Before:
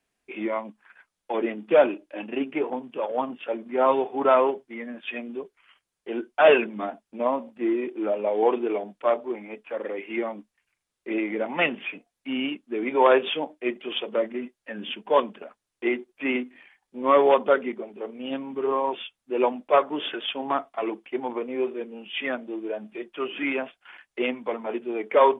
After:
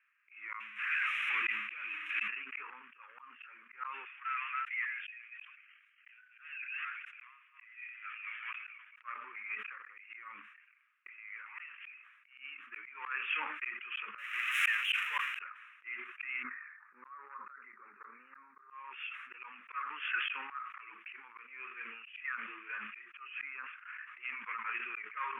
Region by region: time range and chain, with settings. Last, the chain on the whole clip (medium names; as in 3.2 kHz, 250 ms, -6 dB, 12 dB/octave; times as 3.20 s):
0.60–2.28 s: jump at every zero crossing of -23 dBFS + high-order bell 850 Hz -11 dB 2.3 oct
4.05–8.96 s: chunks repeated in reverse 200 ms, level -10.5 dB + Bessel high-pass 2.3 kHz, order 6 + compression 3:1, threshold -39 dBFS
11.09–12.38 s: high-pass 650 Hz + compression 4:1, threshold -41 dBFS
14.18–15.39 s: zero-crossing glitches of -12.5 dBFS + high-pass 260 Hz + treble shelf 2.6 kHz +11.5 dB
16.43–18.70 s: inverse Chebyshev low-pass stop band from 3.2 kHz + compression 16:1, threshold -26 dBFS
23.42–24.20 s: high-pass 580 Hz 6 dB/octave + tilt EQ -5.5 dB/octave
whole clip: elliptic band-pass 1.2–2.6 kHz, stop band 40 dB; slow attack 763 ms; decay stretcher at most 46 dB/s; trim +9.5 dB